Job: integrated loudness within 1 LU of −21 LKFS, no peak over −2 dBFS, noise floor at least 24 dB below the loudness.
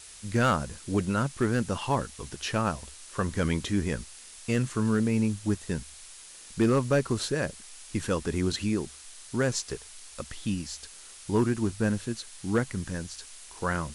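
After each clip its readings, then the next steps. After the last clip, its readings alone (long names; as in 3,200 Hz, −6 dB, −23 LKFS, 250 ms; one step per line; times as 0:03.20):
share of clipped samples 0.3%; peaks flattened at −16.5 dBFS; background noise floor −48 dBFS; target noise floor −54 dBFS; integrated loudness −29.5 LKFS; sample peak −16.5 dBFS; target loudness −21.0 LKFS
→ clipped peaks rebuilt −16.5 dBFS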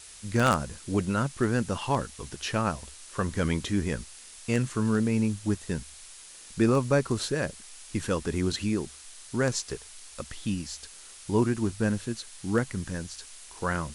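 share of clipped samples 0.0%; background noise floor −48 dBFS; target noise floor −53 dBFS
→ noise reduction from a noise print 6 dB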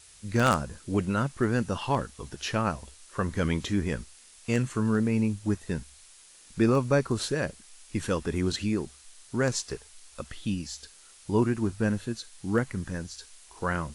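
background noise floor −54 dBFS; integrated loudness −29.0 LKFS; sample peak −7.5 dBFS; target loudness −21.0 LKFS
→ level +8 dB
brickwall limiter −2 dBFS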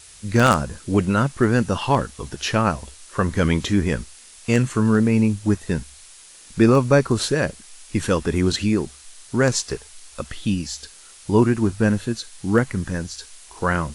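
integrated loudness −21.0 LKFS; sample peak −2.0 dBFS; background noise floor −46 dBFS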